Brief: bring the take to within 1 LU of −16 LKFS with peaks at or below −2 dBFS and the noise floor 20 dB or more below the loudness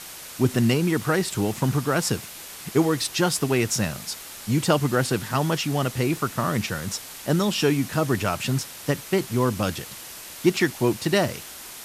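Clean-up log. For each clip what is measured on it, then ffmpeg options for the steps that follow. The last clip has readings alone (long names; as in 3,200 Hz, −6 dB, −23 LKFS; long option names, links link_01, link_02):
background noise floor −40 dBFS; target noise floor −44 dBFS; integrated loudness −24.0 LKFS; sample peak −7.0 dBFS; target loudness −16.0 LKFS
→ -af "afftdn=noise_reduction=6:noise_floor=-40"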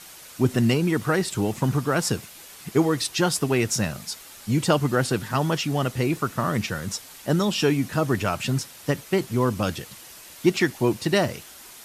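background noise floor −45 dBFS; integrated loudness −24.0 LKFS; sample peak −7.0 dBFS; target loudness −16.0 LKFS
→ -af "volume=8dB,alimiter=limit=-2dB:level=0:latency=1"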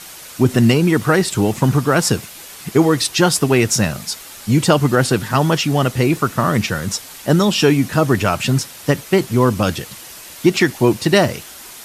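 integrated loudness −16.5 LKFS; sample peak −2.0 dBFS; background noise floor −37 dBFS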